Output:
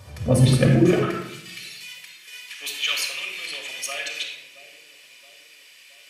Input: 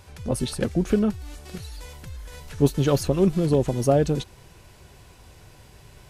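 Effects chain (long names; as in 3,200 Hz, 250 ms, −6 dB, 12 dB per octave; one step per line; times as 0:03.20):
delay with a low-pass on its return 672 ms, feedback 56%, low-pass 610 Hz, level −12 dB
dynamic equaliser 2,300 Hz, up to +7 dB, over −49 dBFS, Q 1.4
high-pass filter sweep 120 Hz → 2,500 Hz, 0:00.65–0:01.16
convolution reverb RT60 0.80 s, pre-delay 3 ms, DRR −1 dB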